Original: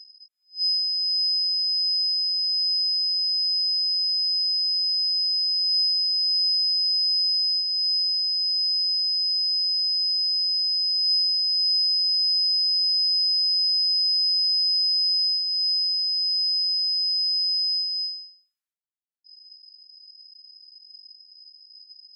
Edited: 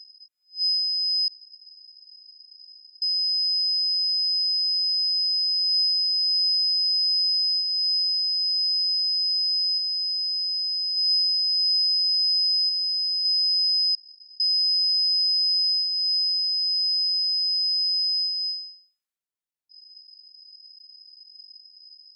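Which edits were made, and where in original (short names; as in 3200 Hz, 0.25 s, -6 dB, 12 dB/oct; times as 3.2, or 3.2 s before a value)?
1.28–3.02 room tone
9.78–10.97 gain -3 dB
12.69–13.25 gain -3.5 dB
13.95 insert room tone 0.45 s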